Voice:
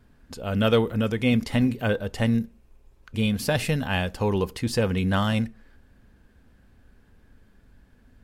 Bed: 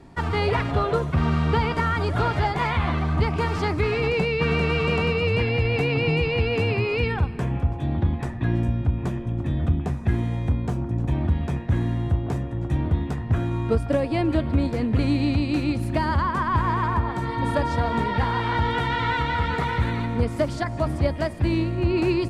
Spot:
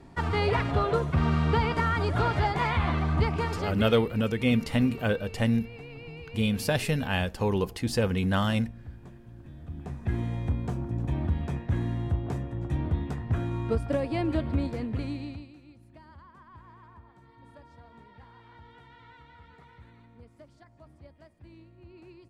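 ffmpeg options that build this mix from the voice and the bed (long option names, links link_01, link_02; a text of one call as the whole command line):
ffmpeg -i stem1.wav -i stem2.wav -filter_complex "[0:a]adelay=3200,volume=-2.5dB[link_01];[1:a]volume=12.5dB,afade=type=out:start_time=3.23:duration=0.85:silence=0.125893,afade=type=in:start_time=9.66:duration=0.55:silence=0.16788,afade=type=out:start_time=14.5:duration=1.04:silence=0.0668344[link_02];[link_01][link_02]amix=inputs=2:normalize=0" out.wav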